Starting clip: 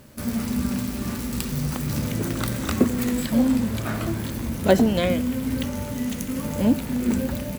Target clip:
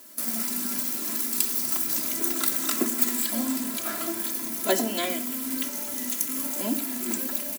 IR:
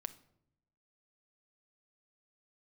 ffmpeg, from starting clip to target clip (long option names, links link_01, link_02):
-filter_complex "[0:a]highpass=frequency=200:width=0.5412,highpass=frequency=200:width=1.3066,aecho=1:1:3:0.83,acrossover=split=840|2500[link_01][link_02][link_03];[link_02]acontrast=86[link_04];[link_03]crystalizer=i=5:c=0[link_05];[link_01][link_04][link_05]amix=inputs=3:normalize=0[link_06];[1:a]atrim=start_sample=2205[link_07];[link_06][link_07]afir=irnorm=-1:irlink=0,volume=-7dB"